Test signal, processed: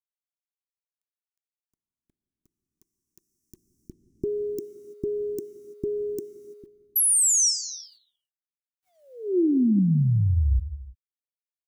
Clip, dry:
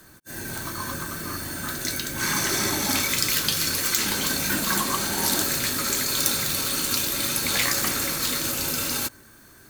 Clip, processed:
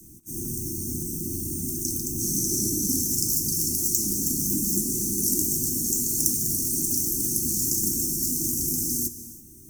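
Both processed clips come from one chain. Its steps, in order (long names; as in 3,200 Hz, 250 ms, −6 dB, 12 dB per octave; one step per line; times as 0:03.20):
Chebyshev band-stop filter 360–5,600 Hz, order 5
in parallel at −3 dB: downward compressor 8 to 1, threshold −33 dBFS
on the sum: bit-depth reduction 12 bits, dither none
reverb whose tail is shaped and stops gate 360 ms flat, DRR 12 dB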